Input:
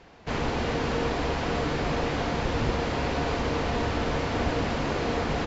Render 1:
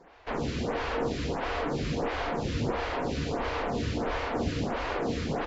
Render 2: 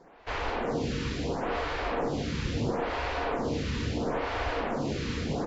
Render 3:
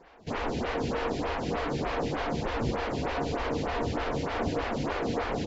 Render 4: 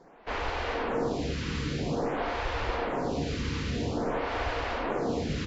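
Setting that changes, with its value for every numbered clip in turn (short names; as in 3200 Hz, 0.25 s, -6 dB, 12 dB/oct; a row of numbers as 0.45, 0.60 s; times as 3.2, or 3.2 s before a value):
photocell phaser, rate: 1.5, 0.74, 3.3, 0.5 Hz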